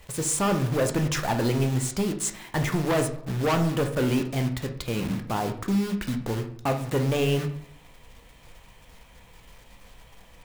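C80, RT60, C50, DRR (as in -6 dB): 14.0 dB, 0.70 s, 10.0 dB, 5.5 dB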